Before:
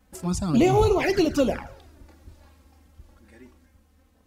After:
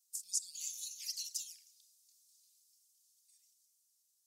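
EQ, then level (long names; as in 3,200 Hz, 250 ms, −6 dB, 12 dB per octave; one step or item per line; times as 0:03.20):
inverse Chebyshev high-pass filter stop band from 1,300 Hz, stop band 70 dB
high-shelf EQ 11,000 Hz −6 dB
+3.5 dB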